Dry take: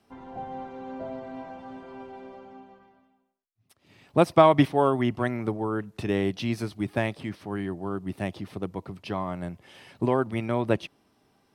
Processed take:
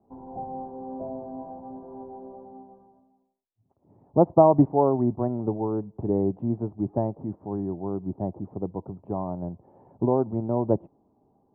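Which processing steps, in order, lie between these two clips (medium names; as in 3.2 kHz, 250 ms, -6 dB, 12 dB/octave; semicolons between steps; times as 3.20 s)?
Chebyshev low-pass 900 Hz, order 4; trim +2 dB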